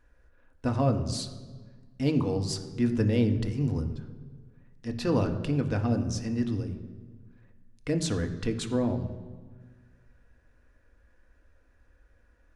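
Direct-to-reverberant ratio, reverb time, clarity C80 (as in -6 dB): 5.0 dB, 1.5 s, 11.5 dB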